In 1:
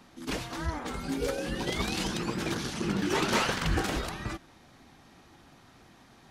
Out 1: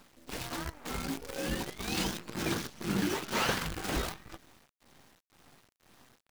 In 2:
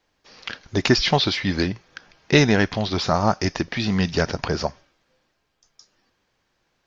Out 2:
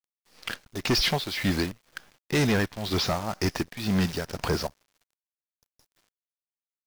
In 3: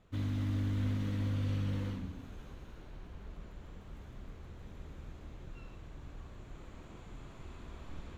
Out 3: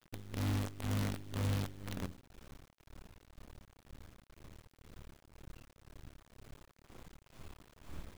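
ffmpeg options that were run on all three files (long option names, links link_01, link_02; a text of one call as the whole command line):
ffmpeg -i in.wav -af "tremolo=f=2:d=0.8,acrusher=bits=7:dc=4:mix=0:aa=0.000001,asoftclip=type=hard:threshold=-19.5dB" out.wav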